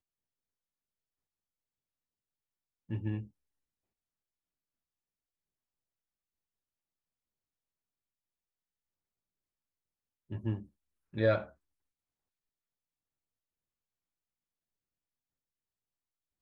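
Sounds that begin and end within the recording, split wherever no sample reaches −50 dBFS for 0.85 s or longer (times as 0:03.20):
0:02.89–0:03.27
0:10.30–0:11.50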